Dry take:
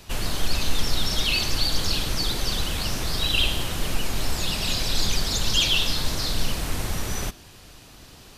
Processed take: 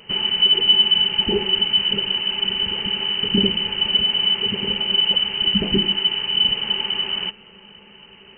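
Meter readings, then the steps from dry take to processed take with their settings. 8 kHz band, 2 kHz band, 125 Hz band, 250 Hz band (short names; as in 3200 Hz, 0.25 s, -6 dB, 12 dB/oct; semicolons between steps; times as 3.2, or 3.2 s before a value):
under -40 dB, +1.0 dB, -4.0 dB, +6.5 dB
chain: dynamic EQ 2000 Hz, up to -4 dB, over -37 dBFS, Q 1; inverted band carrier 3000 Hz; small resonant body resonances 200/390/860 Hz, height 17 dB, ringing for 90 ms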